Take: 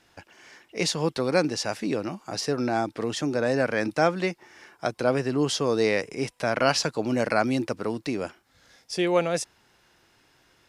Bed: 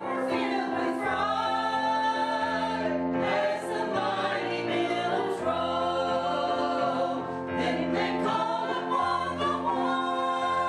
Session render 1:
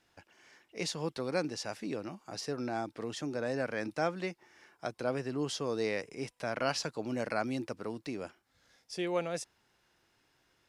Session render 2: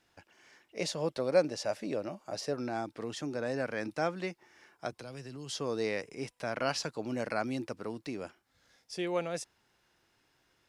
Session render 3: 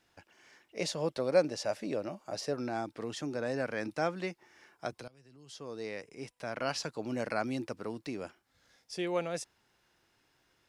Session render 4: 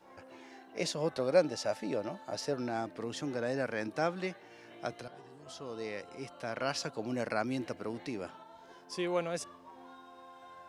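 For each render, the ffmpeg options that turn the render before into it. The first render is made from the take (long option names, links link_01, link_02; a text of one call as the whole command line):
ffmpeg -i in.wav -af "volume=-10dB" out.wav
ffmpeg -i in.wav -filter_complex "[0:a]asettb=1/sr,asplit=3[link_01][link_02][link_03];[link_01]atrim=end=0.774[link_04];[link_02]atrim=start=0.77:end=2.54,asetpts=PTS-STARTPTS,afade=type=in:duration=0.004:curve=qsin,afade=type=out:start_time=1.766:duration=0.004:curve=qsin,equalizer=frequency=590:width=3.7:gain=12[link_05];[link_03]atrim=start=2.536[link_06];[link_04][link_05]acrossfade=duration=0.004:curve1=hsin:curve2=qsin[link_07];[link_07][link_06]acrossfade=duration=0.004:curve1=qsin:curve2=hsin,asettb=1/sr,asplit=3[link_08][link_09][link_10];[link_08]atrim=end=4.924[link_11];[link_09]atrim=start=4.92:end=5.55,asetpts=PTS-STARTPTS,afade=type=in:duration=0.004:curve=qsin,afade=type=out:start_time=0.626:duration=0.004:curve=qsin,acrossover=split=130|3000[link_12][link_13][link_14];[link_13]acompressor=threshold=-44dB:ratio=6:attack=3.2:release=140:knee=2.83:detection=peak[link_15];[link_12][link_15][link_14]amix=inputs=3:normalize=0[link_16];[link_10]atrim=start=5.546[link_17];[link_11][link_16]acrossfade=duration=0.004:curve1=hsin:curve2=qsin[link_18];[link_18][link_17]acrossfade=duration=0.004:curve1=qsin:curve2=hsin" out.wav
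ffmpeg -i in.wav -filter_complex "[0:a]asplit=2[link_01][link_02];[link_01]atrim=end=5.08,asetpts=PTS-STARTPTS,afade=type=out:start_time=5.076:duration=0.004:curve=hsin:silence=0.105925[link_03];[link_02]atrim=start=5.08,asetpts=PTS-STARTPTS,afade=type=in:duration=2.1:silence=0.105925[link_04];[link_03][link_04]concat=n=2:v=0:a=1" out.wav
ffmpeg -i in.wav -i bed.wav -filter_complex "[1:a]volume=-25.5dB[link_01];[0:a][link_01]amix=inputs=2:normalize=0" out.wav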